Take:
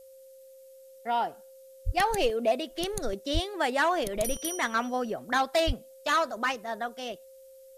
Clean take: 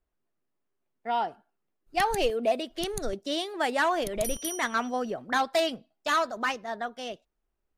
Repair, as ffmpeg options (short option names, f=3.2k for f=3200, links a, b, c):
-filter_complex "[0:a]bandreject=f=530:w=30,asplit=3[a][b][c];[a]afade=t=out:st=1.85:d=0.02[d];[b]highpass=f=140:w=0.5412,highpass=f=140:w=1.3066,afade=t=in:st=1.85:d=0.02,afade=t=out:st=1.97:d=0.02[e];[c]afade=t=in:st=1.97:d=0.02[f];[d][e][f]amix=inputs=3:normalize=0,asplit=3[g][h][i];[g]afade=t=out:st=3.33:d=0.02[j];[h]highpass=f=140:w=0.5412,highpass=f=140:w=1.3066,afade=t=in:st=3.33:d=0.02,afade=t=out:st=3.45:d=0.02[k];[i]afade=t=in:st=3.45:d=0.02[l];[j][k][l]amix=inputs=3:normalize=0,asplit=3[m][n][o];[m]afade=t=out:st=5.66:d=0.02[p];[n]highpass=f=140:w=0.5412,highpass=f=140:w=1.3066,afade=t=in:st=5.66:d=0.02,afade=t=out:st=5.78:d=0.02[q];[o]afade=t=in:st=5.78:d=0.02[r];[p][q][r]amix=inputs=3:normalize=0,agate=range=-21dB:threshold=-44dB"